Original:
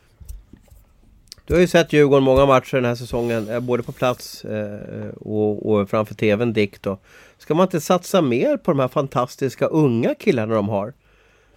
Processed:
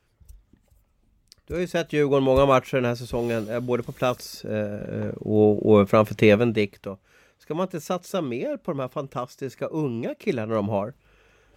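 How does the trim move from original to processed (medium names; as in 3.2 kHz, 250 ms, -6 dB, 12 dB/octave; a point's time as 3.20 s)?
1.64 s -12 dB
2.34 s -4 dB
4.19 s -4 dB
5.09 s +2 dB
6.28 s +2 dB
6.89 s -10 dB
10.10 s -10 dB
10.77 s -3 dB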